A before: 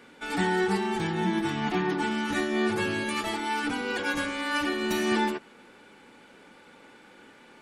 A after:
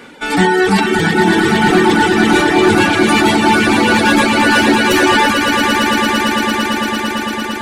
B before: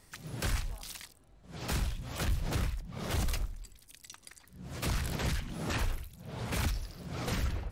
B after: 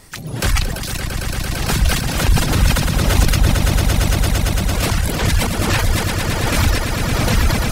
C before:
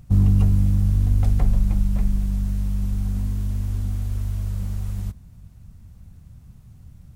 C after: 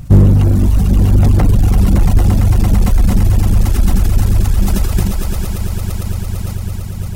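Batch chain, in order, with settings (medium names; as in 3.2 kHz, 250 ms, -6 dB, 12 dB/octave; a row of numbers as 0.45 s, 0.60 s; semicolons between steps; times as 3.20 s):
on a send: echo with a slow build-up 113 ms, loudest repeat 8, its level -7 dB; on the sum: hard clipper -17.5 dBFS; reverb removal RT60 1.3 s; decay stretcher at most 55 dB/s; peak normalisation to -1.5 dBFS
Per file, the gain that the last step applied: +15.5 dB, +15.5 dB, +15.0 dB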